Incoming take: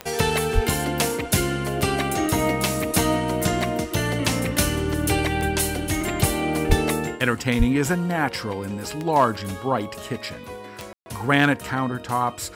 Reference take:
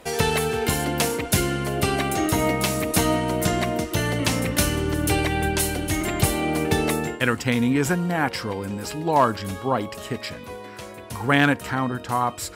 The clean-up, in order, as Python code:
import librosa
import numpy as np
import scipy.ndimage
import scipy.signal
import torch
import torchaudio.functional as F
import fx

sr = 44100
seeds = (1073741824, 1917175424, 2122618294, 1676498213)

y = fx.fix_declick_ar(x, sr, threshold=10.0)
y = fx.highpass(y, sr, hz=140.0, slope=24, at=(0.54, 0.66), fade=0.02)
y = fx.highpass(y, sr, hz=140.0, slope=24, at=(6.68, 6.8), fade=0.02)
y = fx.highpass(y, sr, hz=140.0, slope=24, at=(7.58, 7.7), fade=0.02)
y = fx.fix_ambience(y, sr, seeds[0], print_start_s=9.93, print_end_s=10.43, start_s=10.93, end_s=11.06)